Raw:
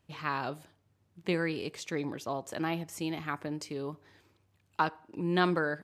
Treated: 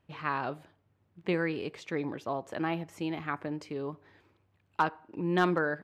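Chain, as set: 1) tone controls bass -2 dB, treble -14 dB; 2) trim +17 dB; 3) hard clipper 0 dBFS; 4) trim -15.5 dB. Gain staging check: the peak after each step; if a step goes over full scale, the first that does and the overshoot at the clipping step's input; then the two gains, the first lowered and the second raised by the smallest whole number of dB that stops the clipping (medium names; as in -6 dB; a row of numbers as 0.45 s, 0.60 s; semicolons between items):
-13.0 dBFS, +4.0 dBFS, 0.0 dBFS, -15.5 dBFS; step 2, 4.0 dB; step 2 +13 dB, step 4 -11.5 dB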